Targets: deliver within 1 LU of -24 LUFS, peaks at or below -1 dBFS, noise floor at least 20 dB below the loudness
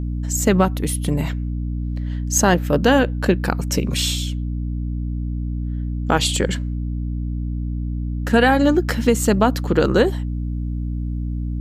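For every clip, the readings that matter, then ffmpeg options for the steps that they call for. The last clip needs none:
hum 60 Hz; highest harmonic 300 Hz; hum level -21 dBFS; loudness -20.5 LUFS; peak level -2.5 dBFS; loudness target -24.0 LUFS
-> -af "bandreject=f=60:t=h:w=6,bandreject=f=120:t=h:w=6,bandreject=f=180:t=h:w=6,bandreject=f=240:t=h:w=6,bandreject=f=300:t=h:w=6"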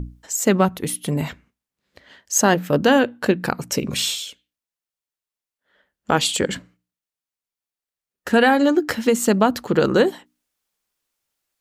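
hum not found; loudness -19.5 LUFS; peak level -3.0 dBFS; loudness target -24.0 LUFS
-> -af "volume=0.596"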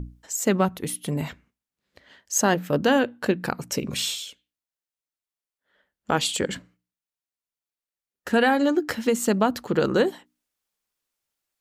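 loudness -24.0 LUFS; peak level -7.5 dBFS; noise floor -93 dBFS

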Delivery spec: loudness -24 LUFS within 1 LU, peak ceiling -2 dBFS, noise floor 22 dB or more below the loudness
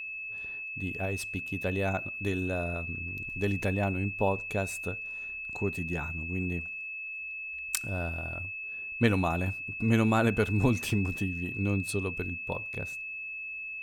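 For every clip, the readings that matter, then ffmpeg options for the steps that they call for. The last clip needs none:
steady tone 2.6 kHz; tone level -36 dBFS; loudness -31.0 LUFS; peak level -6.5 dBFS; loudness target -24.0 LUFS
-> -af "bandreject=f=2600:w=30"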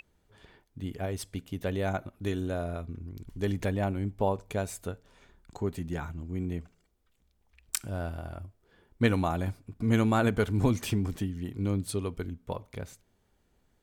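steady tone not found; loudness -32.0 LUFS; peak level -7.0 dBFS; loudness target -24.0 LUFS
-> -af "volume=2.51,alimiter=limit=0.794:level=0:latency=1"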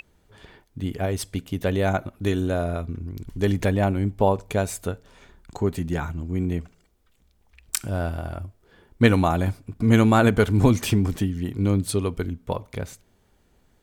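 loudness -24.0 LUFS; peak level -2.0 dBFS; noise floor -63 dBFS

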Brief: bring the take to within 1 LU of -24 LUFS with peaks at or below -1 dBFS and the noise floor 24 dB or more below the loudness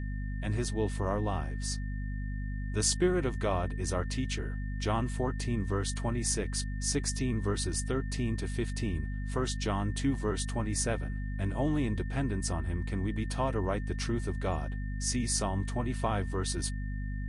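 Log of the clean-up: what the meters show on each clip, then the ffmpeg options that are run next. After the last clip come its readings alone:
hum 50 Hz; highest harmonic 250 Hz; hum level -32 dBFS; steady tone 1.8 kHz; tone level -49 dBFS; loudness -32.5 LUFS; peak level -15.5 dBFS; loudness target -24.0 LUFS
-> -af "bandreject=f=50:t=h:w=6,bandreject=f=100:t=h:w=6,bandreject=f=150:t=h:w=6,bandreject=f=200:t=h:w=6,bandreject=f=250:t=h:w=6"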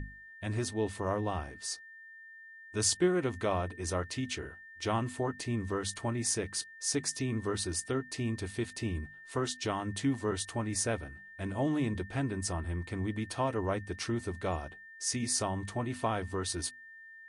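hum not found; steady tone 1.8 kHz; tone level -49 dBFS
-> -af "bandreject=f=1800:w=30"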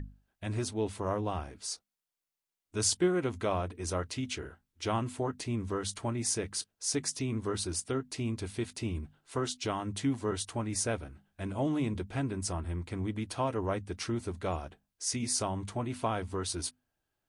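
steady tone not found; loudness -34.0 LUFS; peak level -15.5 dBFS; loudness target -24.0 LUFS
-> -af "volume=3.16"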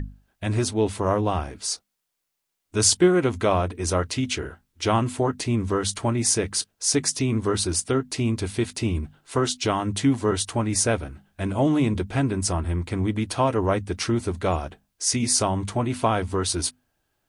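loudness -24.0 LUFS; peak level -5.5 dBFS; noise floor -79 dBFS

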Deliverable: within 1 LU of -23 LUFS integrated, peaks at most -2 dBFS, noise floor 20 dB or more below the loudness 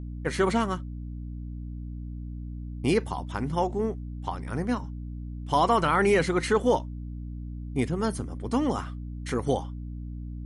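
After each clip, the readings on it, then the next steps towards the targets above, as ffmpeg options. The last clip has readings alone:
hum 60 Hz; highest harmonic 300 Hz; hum level -33 dBFS; loudness -29.0 LUFS; peak level -12.0 dBFS; loudness target -23.0 LUFS
-> -af "bandreject=f=60:t=h:w=4,bandreject=f=120:t=h:w=4,bandreject=f=180:t=h:w=4,bandreject=f=240:t=h:w=4,bandreject=f=300:t=h:w=4"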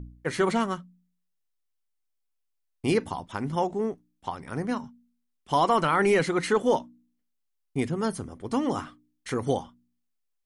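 hum not found; loudness -27.5 LUFS; peak level -12.5 dBFS; loudness target -23.0 LUFS
-> -af "volume=1.68"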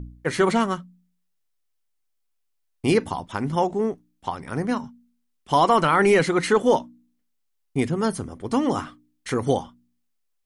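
loudness -23.0 LUFS; peak level -8.0 dBFS; noise floor -72 dBFS

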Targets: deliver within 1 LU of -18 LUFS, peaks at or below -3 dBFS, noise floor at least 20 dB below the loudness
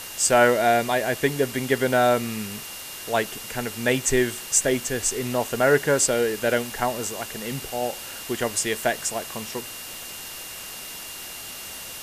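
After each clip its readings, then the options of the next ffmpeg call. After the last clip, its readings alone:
steady tone 2.8 kHz; tone level -43 dBFS; noise floor -37 dBFS; noise floor target -44 dBFS; loudness -24.0 LUFS; peak level -4.0 dBFS; loudness target -18.0 LUFS
-> -af "bandreject=f=2800:w=30"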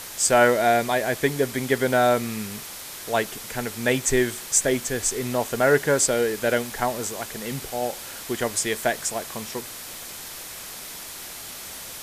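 steady tone not found; noise floor -38 dBFS; noise floor target -44 dBFS
-> -af "afftdn=nr=6:nf=-38"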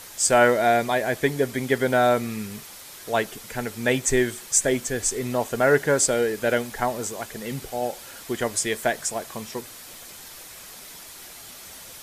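noise floor -43 dBFS; noise floor target -44 dBFS
-> -af "afftdn=nr=6:nf=-43"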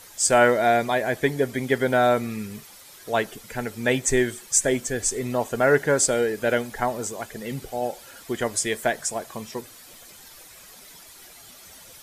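noise floor -47 dBFS; loudness -23.5 LUFS; peak level -4.0 dBFS; loudness target -18.0 LUFS
-> -af "volume=1.88,alimiter=limit=0.708:level=0:latency=1"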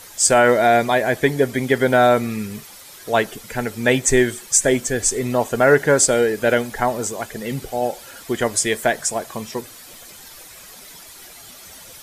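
loudness -18.5 LUFS; peak level -3.0 dBFS; noise floor -42 dBFS

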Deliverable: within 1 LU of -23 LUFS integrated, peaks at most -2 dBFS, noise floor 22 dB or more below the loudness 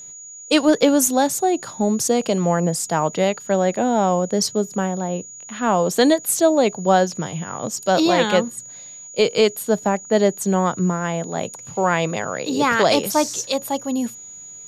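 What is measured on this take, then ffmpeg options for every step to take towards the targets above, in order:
steady tone 6.8 kHz; tone level -36 dBFS; loudness -20.0 LUFS; peak level -4.0 dBFS; loudness target -23.0 LUFS
-> -af "bandreject=f=6800:w=30"
-af "volume=0.708"

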